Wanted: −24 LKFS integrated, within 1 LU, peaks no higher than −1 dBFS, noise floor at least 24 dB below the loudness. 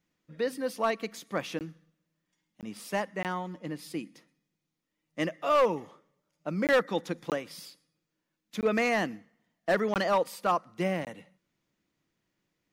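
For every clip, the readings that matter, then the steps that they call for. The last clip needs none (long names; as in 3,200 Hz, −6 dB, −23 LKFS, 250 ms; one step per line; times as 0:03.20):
share of clipped samples 0.4%; peaks flattened at −18.0 dBFS; number of dropouts 8; longest dropout 18 ms; integrated loudness −30.5 LKFS; sample peak −18.0 dBFS; target loudness −24.0 LKFS
→ clipped peaks rebuilt −18 dBFS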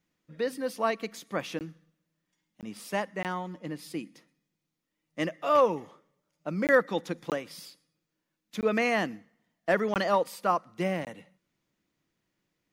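share of clipped samples 0.0%; number of dropouts 8; longest dropout 18 ms
→ repair the gap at 0:01.59/0:02.61/0:03.23/0:06.67/0:07.30/0:08.61/0:09.94/0:11.05, 18 ms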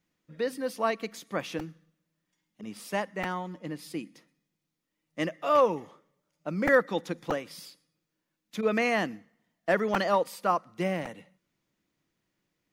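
number of dropouts 0; integrated loudness −29.5 LKFS; sample peak −10.5 dBFS; target loudness −24.0 LKFS
→ level +5.5 dB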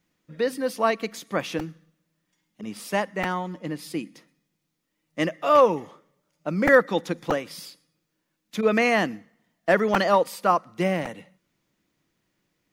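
integrated loudness −24.0 LKFS; sample peak −5.0 dBFS; background noise floor −77 dBFS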